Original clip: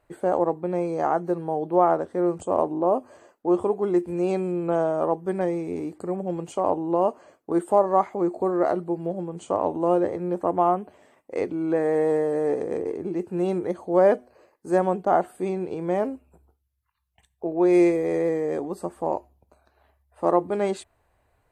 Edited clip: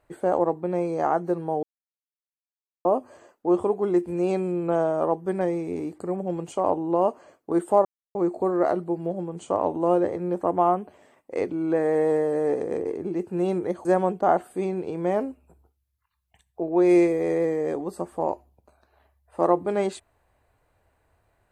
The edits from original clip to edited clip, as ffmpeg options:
ffmpeg -i in.wav -filter_complex "[0:a]asplit=6[link_01][link_02][link_03][link_04][link_05][link_06];[link_01]atrim=end=1.63,asetpts=PTS-STARTPTS,afade=type=out:start_time=1.626:duration=0.004:curve=hsin[link_07];[link_02]atrim=start=1.63:end=2.85,asetpts=PTS-STARTPTS,volume=0[link_08];[link_03]atrim=start=2.85:end=7.85,asetpts=PTS-STARTPTS,afade=type=in:duration=0.004:curve=hsin,afade=type=out:start_time=4.996:duration=0.004:curve=hsin[link_09];[link_04]atrim=start=7.85:end=8.15,asetpts=PTS-STARTPTS,volume=0[link_10];[link_05]atrim=start=8.15:end=13.852,asetpts=PTS-STARTPTS,afade=type=in:duration=0.004:curve=hsin[link_11];[link_06]atrim=start=14.688[link_12];[link_07][link_08][link_09][link_10][link_11]concat=n=5:v=0:a=1[link_13];[link_13][link_12]acrossfade=duration=0.004:curve1=hsin:curve2=hsin" out.wav

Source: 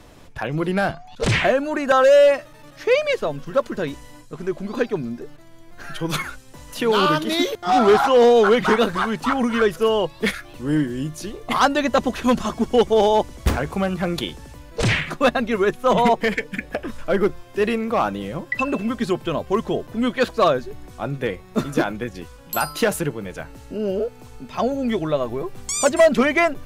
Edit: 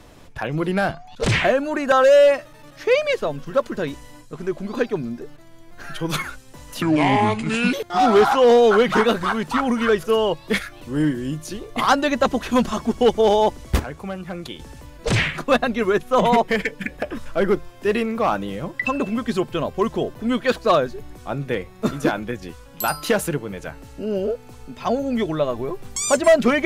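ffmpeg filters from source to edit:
ffmpeg -i in.wav -filter_complex "[0:a]asplit=5[link_01][link_02][link_03][link_04][link_05];[link_01]atrim=end=6.824[link_06];[link_02]atrim=start=6.82:end=7.46,asetpts=PTS-STARTPTS,asetrate=30870,aresample=44100[link_07];[link_03]atrim=start=7.456:end=13.522[link_08];[link_04]atrim=start=13.518:end=14.322,asetpts=PTS-STARTPTS,volume=-8dB[link_09];[link_05]atrim=start=14.318[link_10];[link_06][link_07]acrossfade=duration=0.004:curve1=hsin:curve2=hsin[link_11];[link_11][link_08]acrossfade=duration=0.004:curve1=hsin:curve2=hsin[link_12];[link_12][link_09]acrossfade=duration=0.004:curve1=hsin:curve2=hsin[link_13];[link_13][link_10]acrossfade=duration=0.004:curve1=hsin:curve2=hsin" out.wav

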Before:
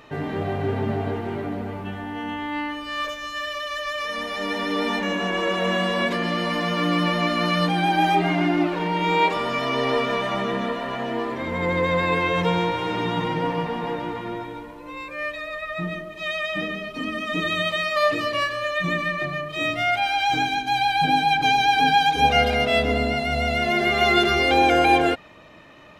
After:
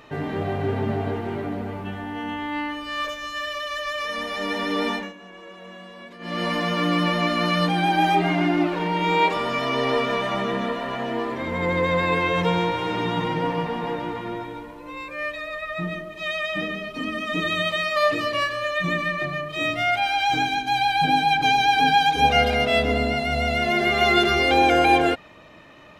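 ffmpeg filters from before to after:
ffmpeg -i in.wav -filter_complex "[0:a]asplit=3[link_01][link_02][link_03];[link_01]atrim=end=5.13,asetpts=PTS-STARTPTS,afade=type=out:start_time=4.88:duration=0.25:silence=0.112202[link_04];[link_02]atrim=start=5.13:end=6.19,asetpts=PTS-STARTPTS,volume=-19dB[link_05];[link_03]atrim=start=6.19,asetpts=PTS-STARTPTS,afade=type=in:duration=0.25:silence=0.112202[link_06];[link_04][link_05][link_06]concat=n=3:v=0:a=1" out.wav

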